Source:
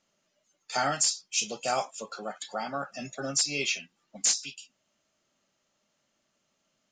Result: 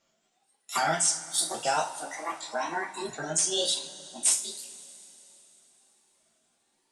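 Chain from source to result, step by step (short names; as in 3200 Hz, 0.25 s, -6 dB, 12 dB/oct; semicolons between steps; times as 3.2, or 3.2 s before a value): repeated pitch sweeps +8 st, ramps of 0.772 s; two-slope reverb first 0.26 s, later 3.6 s, from -22 dB, DRR -0.5 dB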